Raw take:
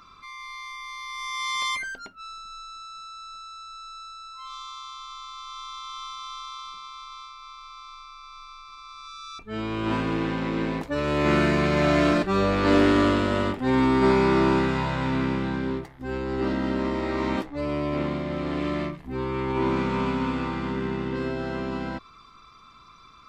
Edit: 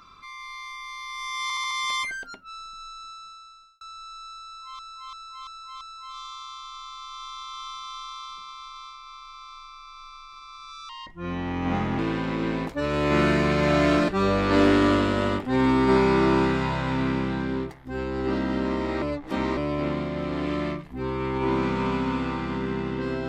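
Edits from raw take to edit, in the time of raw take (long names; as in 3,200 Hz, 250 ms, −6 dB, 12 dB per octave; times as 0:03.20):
0:01.43: stutter 0.07 s, 5 plays
0:02.81–0:03.53: fade out
0:04.17–0:04.51: repeat, 5 plays
0:09.25–0:10.13: play speed 80%
0:17.16–0:17.71: reverse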